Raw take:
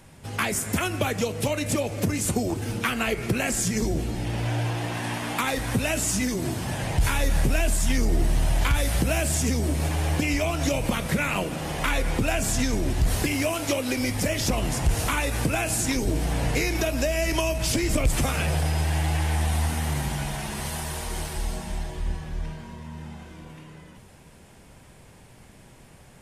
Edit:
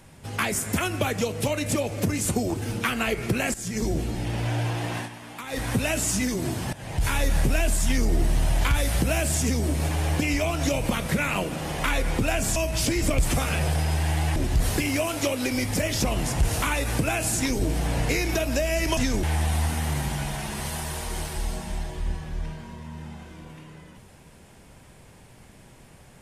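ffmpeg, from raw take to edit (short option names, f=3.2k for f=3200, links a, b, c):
-filter_complex "[0:a]asplit=9[a][b][c][d][e][f][g][h][i];[a]atrim=end=3.54,asetpts=PTS-STARTPTS,afade=t=out:st=3.536:d=0.004:c=hsin:silence=0.16788[j];[b]atrim=start=3.54:end=5.09,asetpts=PTS-STARTPTS,afade=t=in:d=0.34:silence=0.16788,afade=t=out:st=1.42:d=0.13:c=qsin:silence=0.266073[k];[c]atrim=start=5.09:end=5.49,asetpts=PTS-STARTPTS,volume=-11.5dB[l];[d]atrim=start=5.49:end=6.73,asetpts=PTS-STARTPTS,afade=t=in:d=0.13:c=qsin:silence=0.266073,afade=t=out:st=1.236:d=0.004:c=hsin:silence=0.149624[m];[e]atrim=start=6.73:end=12.562,asetpts=PTS-STARTPTS,afade=t=in:d=0.42:silence=0.149624[n];[f]atrim=start=17.428:end=19.232[o];[g]atrim=start=12.818:end=17.432[p];[h]atrim=start=12.558:end=12.822[q];[i]atrim=start=19.228[r];[j][k][l][m][n]concat=n=5:v=0:a=1[s];[s][o]acrossfade=d=0.004:c1=hsin:c2=hsin[t];[t][p]acrossfade=d=0.004:c1=hsin:c2=hsin[u];[u][q]acrossfade=d=0.004:c1=hsin:c2=hsin[v];[v][r]acrossfade=d=0.004:c1=hsin:c2=hsin"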